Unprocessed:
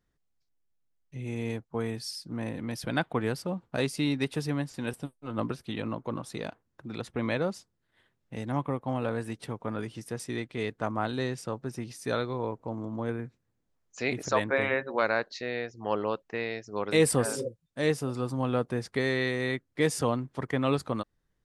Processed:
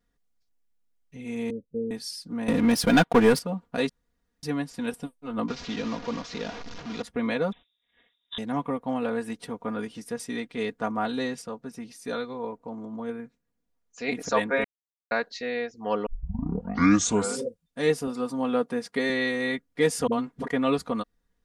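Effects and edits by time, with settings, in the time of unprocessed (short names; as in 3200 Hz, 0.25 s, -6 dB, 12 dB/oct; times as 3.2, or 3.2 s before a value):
1.5–1.91 rippled Chebyshev low-pass 570 Hz, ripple 3 dB
2.48–3.39 sample leveller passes 3
3.89–4.43 room tone
5.48–7.02 delta modulation 32 kbps, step -35 dBFS
7.52–8.38 inverted band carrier 3700 Hz
11.42–14.08 gain -4 dB
14.64–15.11 mute
16.06 tape start 1.35 s
18.07–19.1 HPF 150 Hz
20.07–20.48 dispersion highs, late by 51 ms, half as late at 310 Hz
whole clip: comb 4.2 ms, depth 77%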